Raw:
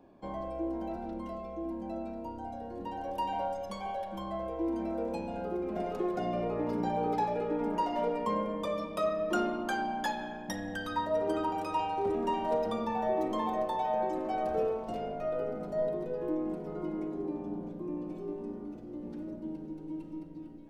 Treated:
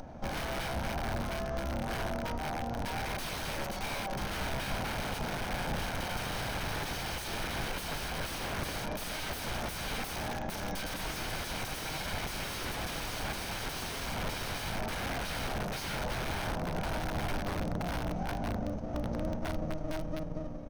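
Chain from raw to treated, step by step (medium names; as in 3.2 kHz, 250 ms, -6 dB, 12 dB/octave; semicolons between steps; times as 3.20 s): comb filter that takes the minimum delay 1.3 ms; peaking EQ 6.1 kHz +14.5 dB 0.5 oct; hum notches 50/100/150/200 Hz; frequency-shifting echo 282 ms, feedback 58%, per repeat -51 Hz, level -22 dB; integer overflow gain 35.5 dB; band-stop 7.3 kHz, Q 6.2; peak limiter -35.5 dBFS, peak gain reduction 3.5 dB; tilt EQ -2 dB/octave; upward compressor, threshold -45 dBFS; trim +6.5 dB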